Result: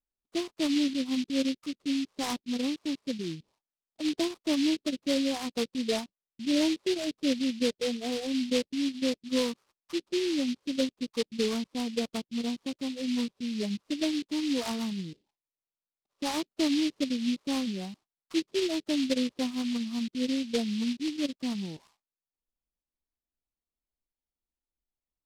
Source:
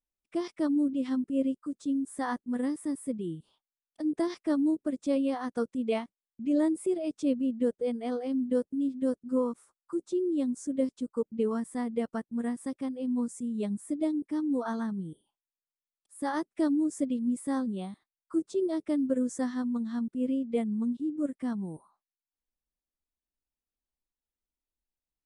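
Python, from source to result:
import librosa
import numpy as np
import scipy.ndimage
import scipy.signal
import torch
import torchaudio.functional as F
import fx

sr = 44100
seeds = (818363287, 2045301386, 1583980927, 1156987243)

y = scipy.signal.sosfilt(scipy.signal.butter(8, 1400.0, 'lowpass', fs=sr, output='sos'), x)
y = fx.noise_mod_delay(y, sr, seeds[0], noise_hz=3400.0, depth_ms=0.14)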